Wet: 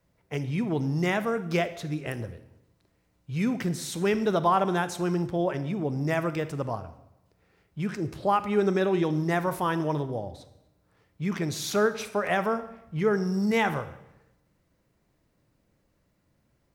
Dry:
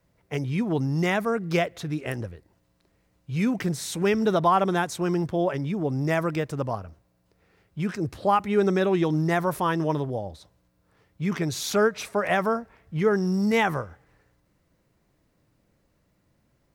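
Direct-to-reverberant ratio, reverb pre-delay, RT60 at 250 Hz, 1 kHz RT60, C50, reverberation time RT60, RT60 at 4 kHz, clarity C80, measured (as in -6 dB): 12.0 dB, 31 ms, 1.0 s, 0.85 s, 14.0 dB, 0.90 s, 0.75 s, 16.0 dB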